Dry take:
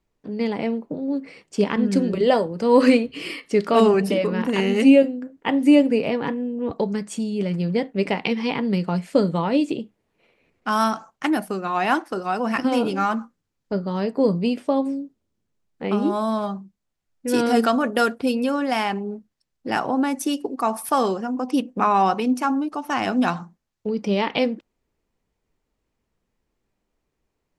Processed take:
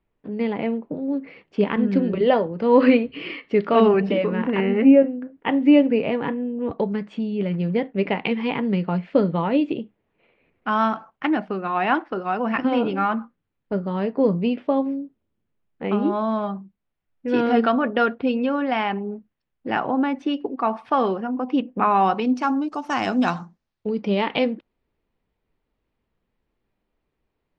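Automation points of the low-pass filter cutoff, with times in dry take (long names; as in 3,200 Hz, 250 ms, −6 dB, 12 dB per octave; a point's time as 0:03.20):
low-pass filter 24 dB per octave
0:04.23 3,200 Hz
0:04.98 1,900 Hz
0:05.24 3,200 Hz
0:21.91 3,200 Hz
0:22.72 7,300 Hz
0:23.34 7,300 Hz
0:23.96 4,000 Hz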